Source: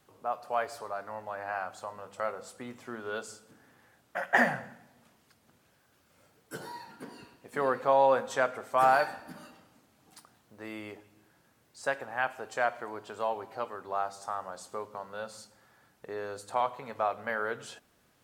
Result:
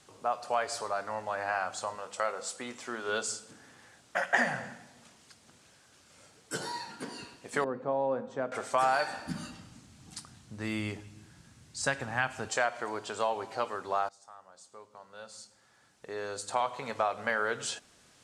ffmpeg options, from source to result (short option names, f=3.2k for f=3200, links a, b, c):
-filter_complex "[0:a]asettb=1/sr,asplit=3[a][b][c];[a]atrim=end=1.954[d];[b]atrim=start=1.95:end=3.09,asetpts=PTS-STARTPTS,afade=t=in:d=0.004:c=qsin,afade=t=out:st=1.136:d=0.004:c=qsin,equalizer=f=100:t=o:w=2.2:g=-10[e];[c]atrim=start=3.086[f];[d][e]acrossfade=d=0.004:c1=hsin:c2=qsin[g];[g][f]acrossfade=d=0.004:c1=qsin:c2=hsin,asettb=1/sr,asplit=3[h][i][j];[h]atrim=end=7.644[k];[i]atrim=start=7.64:end=8.52,asetpts=PTS-STARTPTS,afade=t=in:d=0.004:c=qsin,afade=t=out:st=0.876:d=0.004:c=qsin,bandpass=f=200:t=q:w=0.99[l];[j]atrim=start=8.516[m];[k][l]acrossfade=d=0.004:c1=hsin:c2=qsin[n];[n][m]acrossfade=d=0.004:c1=qsin:c2=hsin,asplit=3[o][p][q];[o]afade=t=out:st=9.26:d=0.02[r];[p]asubboost=boost=5.5:cutoff=200,afade=t=in:st=9.26:d=0.02,afade=t=out:st=12.48:d=0.02[s];[q]afade=t=in:st=12.48:d=0.02[t];[r][s][t]amix=inputs=3:normalize=0,asplit=2[u][v];[u]atrim=end=14.09,asetpts=PTS-STARTPTS,afade=t=out:st=14.086:d=0.004:c=hsin:silence=0.0841395[w];[v]atrim=start=14.09,asetpts=PTS-STARTPTS,afade=t=in:d=2.75:c=qua:silence=0.0841395[x];[w][x]concat=n=2:v=0:a=1,lowpass=f=8.7k:w=0.5412,lowpass=f=8.7k:w=1.3066,highshelf=f=3.4k:g=12,acompressor=threshold=-29dB:ratio=3,volume=3.5dB"